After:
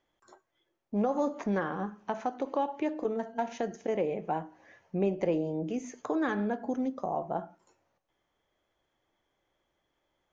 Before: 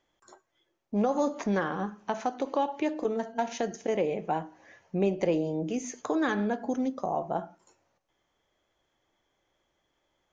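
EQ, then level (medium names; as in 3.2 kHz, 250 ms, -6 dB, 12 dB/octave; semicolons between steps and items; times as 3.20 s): treble shelf 6.1 kHz -9 dB; dynamic bell 4.3 kHz, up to -4 dB, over -51 dBFS, Q 0.91; -2.0 dB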